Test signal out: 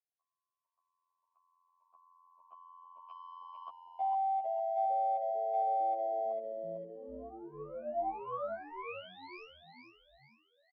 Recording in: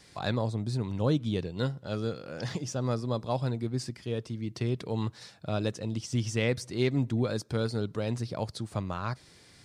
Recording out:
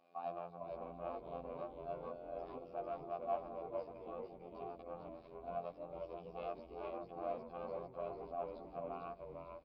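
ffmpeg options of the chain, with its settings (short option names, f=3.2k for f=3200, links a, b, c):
-filter_complex "[0:a]tiltshelf=f=1.3k:g=7.5,aresample=11025,asoftclip=type=tanh:threshold=-25dB,aresample=44100,afreqshift=82,afftfilt=real='hypot(re,im)*cos(PI*b)':imag='0':win_size=2048:overlap=0.75,asplit=3[a][b][c];[a]bandpass=f=730:t=q:w=8,volume=0dB[d];[b]bandpass=f=1.09k:t=q:w=8,volume=-6dB[e];[c]bandpass=f=2.44k:t=q:w=8,volume=-9dB[f];[d][e][f]amix=inputs=3:normalize=0,asplit=2[g][h];[h]asplit=5[i][j][k][l][m];[i]adelay=450,afreqshift=-110,volume=-4.5dB[n];[j]adelay=900,afreqshift=-220,volume=-11.8dB[o];[k]adelay=1350,afreqshift=-330,volume=-19.2dB[p];[l]adelay=1800,afreqshift=-440,volume=-26.5dB[q];[m]adelay=2250,afreqshift=-550,volume=-33.8dB[r];[n][o][p][q][r]amix=inputs=5:normalize=0[s];[g][s]amix=inputs=2:normalize=0,volume=1.5dB"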